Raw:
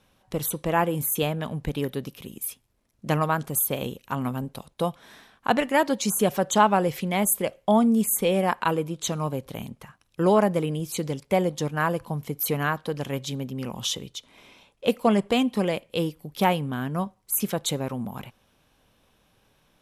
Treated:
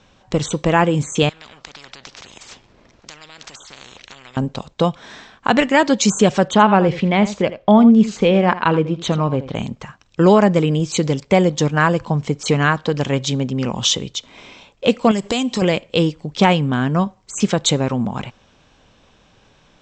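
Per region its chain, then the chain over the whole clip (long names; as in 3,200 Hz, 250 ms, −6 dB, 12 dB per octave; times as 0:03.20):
0:01.29–0:04.37: downward compressor 2.5 to 1, threshold −36 dBFS + high-frequency loss of the air 130 metres + every bin compressed towards the loudest bin 10 to 1
0:06.48–0:09.55: high-frequency loss of the air 130 metres + single-tap delay 81 ms −14.5 dB + linearly interpolated sample-rate reduction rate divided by 3×
0:15.11–0:15.62: bass and treble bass −1 dB, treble +14 dB + downward compressor 3 to 1, threshold −29 dBFS
whole clip: Butterworth low-pass 7,800 Hz 96 dB per octave; dynamic equaliser 700 Hz, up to −4 dB, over −30 dBFS, Q 0.82; boost into a limiter +12 dB; level −1 dB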